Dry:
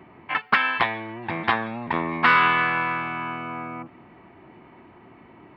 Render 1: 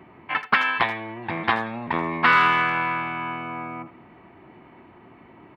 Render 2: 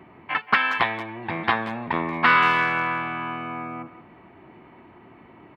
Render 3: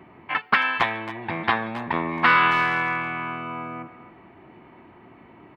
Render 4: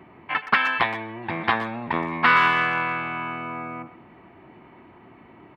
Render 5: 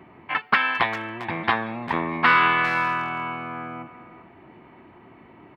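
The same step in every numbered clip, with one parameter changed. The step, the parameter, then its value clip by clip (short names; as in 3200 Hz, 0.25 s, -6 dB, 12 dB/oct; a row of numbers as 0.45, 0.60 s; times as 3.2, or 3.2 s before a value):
speakerphone echo, time: 80, 180, 270, 120, 400 ms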